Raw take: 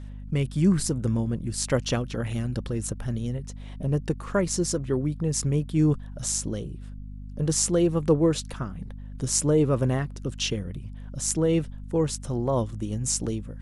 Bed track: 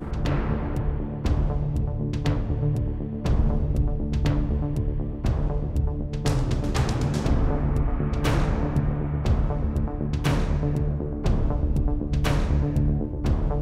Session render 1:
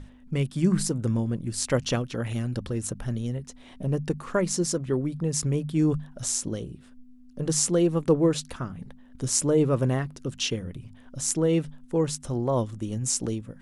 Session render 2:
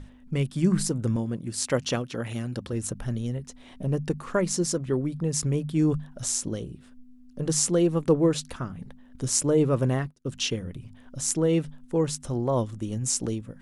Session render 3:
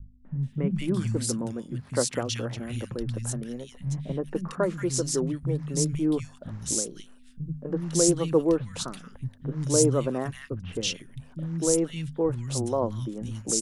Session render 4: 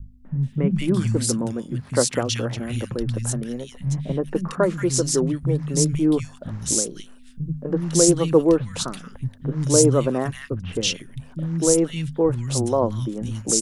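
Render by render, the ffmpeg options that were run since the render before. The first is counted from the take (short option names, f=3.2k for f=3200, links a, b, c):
-af "bandreject=f=50:t=h:w=6,bandreject=f=100:t=h:w=6,bandreject=f=150:t=h:w=6,bandreject=f=200:t=h:w=6"
-filter_complex "[0:a]asettb=1/sr,asplit=3[a][b][c];[a]atrim=end=1.164[d];[b]atrim=start=1.16:end=2.73,asetpts=PTS-STARTPTS,afade=t=in:d=0.004:c=qsin,afade=t=out:st=1.566:d=0.004:c=qsin,highpass=f=140:p=1[e];[c]atrim=start=2.726[f];[d][e]acrossfade=d=0.004:c1=hsin:c2=qsin[g];[g][f]acrossfade=d=0.004:c1=qsin:c2=hsin,asettb=1/sr,asplit=3[h][i][j];[h]atrim=end=9.434[k];[i]atrim=start=9.43:end=10.32,asetpts=PTS-STARTPTS,afade=t=in:d=0.004:c=qsin,afade=t=out:st=0.886:d=0.004:c=qsin,agate=range=-33dB:threshold=-32dB:ratio=3:release=100:detection=peak[l];[j]atrim=start=10.316[m];[k][l]acrossfade=d=0.004:c1=hsin:c2=qsin[n];[n][m]acrossfade=d=0.004:c1=qsin:c2=hsin"
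-filter_complex "[0:a]acrossover=split=190|1800[a][b][c];[b]adelay=250[d];[c]adelay=430[e];[a][d][e]amix=inputs=3:normalize=0"
-af "volume=6dB,alimiter=limit=-3dB:level=0:latency=1"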